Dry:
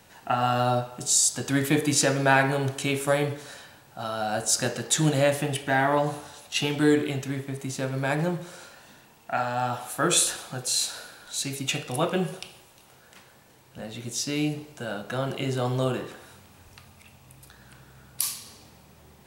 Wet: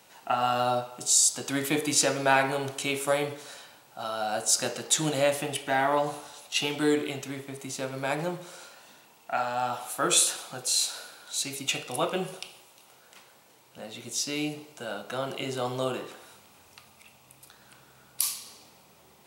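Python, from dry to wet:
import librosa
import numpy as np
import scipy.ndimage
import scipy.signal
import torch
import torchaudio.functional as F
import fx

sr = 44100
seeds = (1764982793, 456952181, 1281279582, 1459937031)

y = fx.highpass(x, sr, hz=430.0, slope=6)
y = fx.peak_eq(y, sr, hz=1700.0, db=-7.0, octaves=0.23)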